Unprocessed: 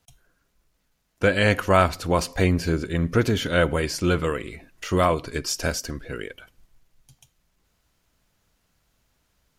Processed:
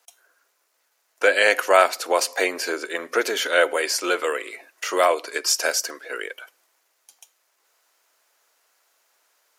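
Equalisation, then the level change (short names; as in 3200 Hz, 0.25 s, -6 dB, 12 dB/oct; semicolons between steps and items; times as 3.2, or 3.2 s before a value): Bessel high-pass 650 Hz, order 6; dynamic EQ 1100 Hz, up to -6 dB, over -37 dBFS, Q 1.9; bell 3300 Hz -4.5 dB 0.97 oct; +8.0 dB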